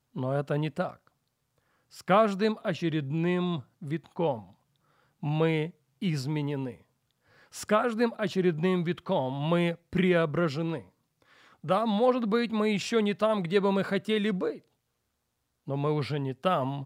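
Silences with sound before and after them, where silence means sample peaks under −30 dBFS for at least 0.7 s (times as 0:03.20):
0:00.88–0:02.09
0:04.37–0:05.23
0:06.70–0:07.59
0:10.78–0:11.69
0:14.51–0:15.68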